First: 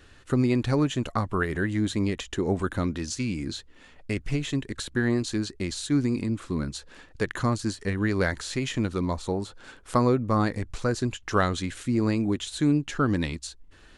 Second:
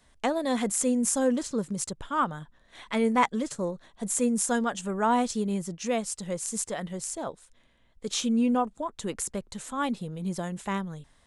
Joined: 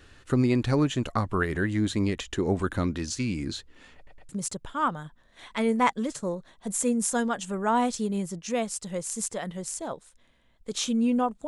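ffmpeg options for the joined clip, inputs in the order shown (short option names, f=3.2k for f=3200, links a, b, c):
-filter_complex "[0:a]apad=whole_dur=11.47,atrim=end=11.47,asplit=3[a][b][c];[a]atrim=end=4.072[d];[b]atrim=start=3.958:end=4.072[e];[c]atrim=start=3.958:end=4.072[f];[1:a]atrim=start=1.648:end=8.83[g];[d][e]acrossfade=d=0.004:c1=hsin:c2=hsin[h];[h][f]acrossfade=d=0.004:c1=hsin:c2=hsin[i];[i][g]acrossfade=d=0.004:c1=hsin:c2=hsin"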